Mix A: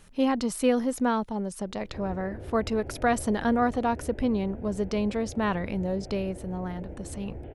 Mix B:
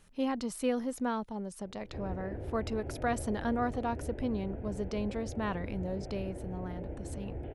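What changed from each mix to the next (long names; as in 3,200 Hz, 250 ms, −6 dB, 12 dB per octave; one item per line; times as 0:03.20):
speech −7.5 dB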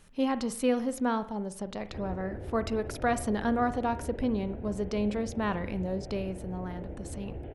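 reverb: on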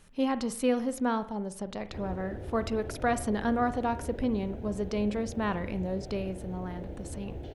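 background: remove Butterworth low-pass 2,600 Hz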